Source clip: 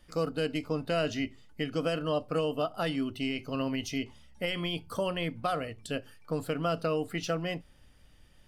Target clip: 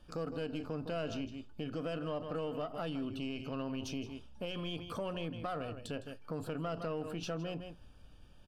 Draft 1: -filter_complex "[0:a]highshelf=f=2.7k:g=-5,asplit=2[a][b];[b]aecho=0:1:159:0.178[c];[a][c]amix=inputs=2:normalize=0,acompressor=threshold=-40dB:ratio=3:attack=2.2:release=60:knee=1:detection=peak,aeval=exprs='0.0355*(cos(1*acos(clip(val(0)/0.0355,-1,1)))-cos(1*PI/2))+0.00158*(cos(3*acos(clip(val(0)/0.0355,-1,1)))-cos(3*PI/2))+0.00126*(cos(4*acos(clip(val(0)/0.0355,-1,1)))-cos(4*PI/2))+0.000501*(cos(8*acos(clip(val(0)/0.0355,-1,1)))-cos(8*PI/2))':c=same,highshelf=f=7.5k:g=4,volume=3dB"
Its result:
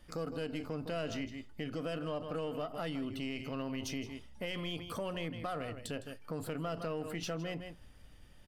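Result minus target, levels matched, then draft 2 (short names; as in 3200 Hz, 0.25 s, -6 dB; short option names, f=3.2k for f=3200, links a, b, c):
8000 Hz band +4.5 dB; 2000 Hz band +3.0 dB
-filter_complex "[0:a]highshelf=f=2.7k:g=-5,asplit=2[a][b];[b]aecho=0:1:159:0.178[c];[a][c]amix=inputs=2:normalize=0,acompressor=threshold=-40dB:ratio=3:attack=2.2:release=60:knee=1:detection=peak,asuperstop=centerf=2000:order=4:qfactor=3.5,aeval=exprs='0.0355*(cos(1*acos(clip(val(0)/0.0355,-1,1)))-cos(1*PI/2))+0.00158*(cos(3*acos(clip(val(0)/0.0355,-1,1)))-cos(3*PI/2))+0.00126*(cos(4*acos(clip(val(0)/0.0355,-1,1)))-cos(4*PI/2))+0.000501*(cos(8*acos(clip(val(0)/0.0355,-1,1)))-cos(8*PI/2))':c=same,highshelf=f=7.5k:g=-7.5,volume=3dB"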